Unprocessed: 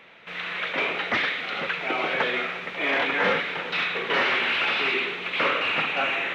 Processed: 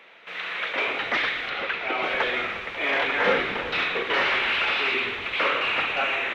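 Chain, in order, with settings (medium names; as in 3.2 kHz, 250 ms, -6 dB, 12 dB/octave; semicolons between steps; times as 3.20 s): 1.49–2.03 s: low-pass 5.2 kHz 12 dB/octave; 3.27–4.03 s: bass shelf 420 Hz +10 dB; high-pass 310 Hz 12 dB/octave; frequency-shifting echo 119 ms, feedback 56%, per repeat -150 Hz, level -14 dB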